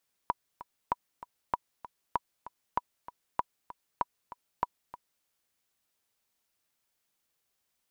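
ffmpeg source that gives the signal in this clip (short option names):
-f lavfi -i "aevalsrc='pow(10,(-13.5-16*gte(mod(t,2*60/194),60/194))/20)*sin(2*PI*974*mod(t,60/194))*exp(-6.91*mod(t,60/194)/0.03)':d=4.94:s=44100"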